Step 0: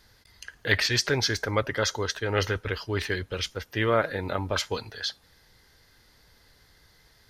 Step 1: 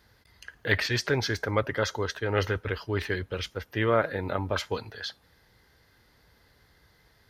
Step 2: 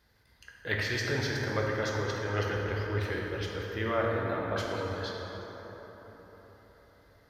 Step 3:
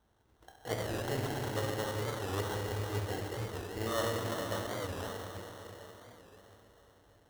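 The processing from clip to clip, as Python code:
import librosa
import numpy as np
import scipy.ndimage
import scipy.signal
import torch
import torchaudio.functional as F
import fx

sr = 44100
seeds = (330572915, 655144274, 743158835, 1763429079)

y1 = scipy.signal.sosfilt(scipy.signal.butter(2, 44.0, 'highpass', fs=sr, output='sos'), x)
y1 = fx.peak_eq(y1, sr, hz=6900.0, db=-8.0, octaves=2.1)
y2 = fx.rev_plate(y1, sr, seeds[0], rt60_s=4.8, hf_ratio=0.4, predelay_ms=0, drr_db=-2.5)
y2 = y2 * 10.0 ** (-7.5 / 20.0)
y3 = y2 + 10.0 ** (-12.5 / 20.0) * np.pad(y2, (int(447 * sr / 1000.0), 0))[:len(y2)]
y3 = fx.sample_hold(y3, sr, seeds[1], rate_hz=2400.0, jitter_pct=0)
y3 = fx.record_warp(y3, sr, rpm=45.0, depth_cents=160.0)
y3 = y3 * 10.0 ** (-4.5 / 20.0)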